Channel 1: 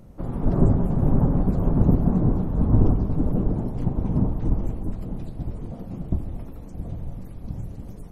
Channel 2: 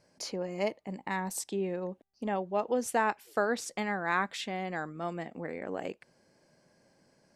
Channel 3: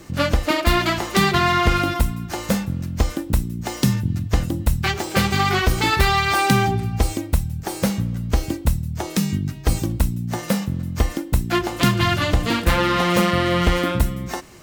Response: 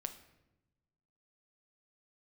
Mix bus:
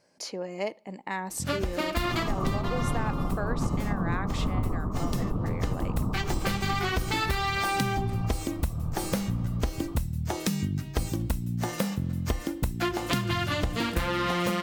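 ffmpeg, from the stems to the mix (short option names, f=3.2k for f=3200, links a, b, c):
-filter_complex "[0:a]lowpass=f=1.2k:t=q:w=11,adelay=1850,volume=-2.5dB[a];[1:a]lowshelf=f=140:g=-9.5,volume=1dB,asplit=3[b][c][d];[c]volume=-17.5dB[e];[2:a]adelay=1300,volume=-3.5dB,asplit=2[f][g];[g]volume=-17.5dB[h];[d]apad=whole_len=702490[i];[f][i]sidechaincompress=threshold=-35dB:ratio=8:attack=23:release=833[j];[3:a]atrim=start_sample=2205[k];[e][h]amix=inputs=2:normalize=0[l];[l][k]afir=irnorm=-1:irlink=0[m];[a][b][j][m]amix=inputs=4:normalize=0,acompressor=threshold=-24dB:ratio=6"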